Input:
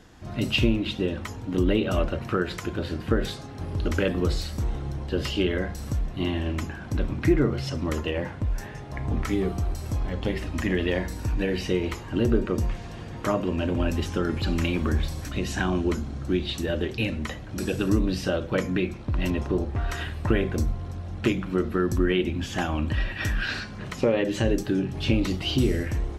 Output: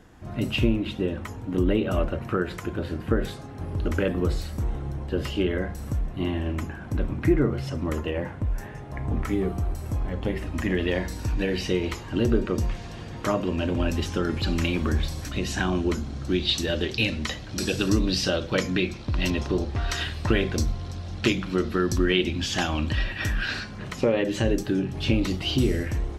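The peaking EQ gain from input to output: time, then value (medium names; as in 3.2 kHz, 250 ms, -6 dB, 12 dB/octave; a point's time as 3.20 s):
peaking EQ 4.6 kHz 1.5 oct
10.35 s -7 dB
11.10 s +3.5 dB
15.99 s +3.5 dB
16.58 s +11.5 dB
22.82 s +11.5 dB
23.24 s +1 dB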